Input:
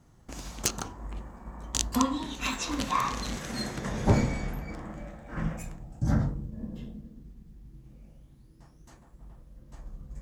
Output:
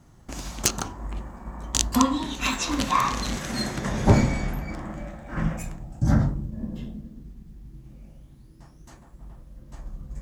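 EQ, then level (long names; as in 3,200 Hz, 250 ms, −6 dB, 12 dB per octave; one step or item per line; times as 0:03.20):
notch filter 470 Hz, Q 12
+5.5 dB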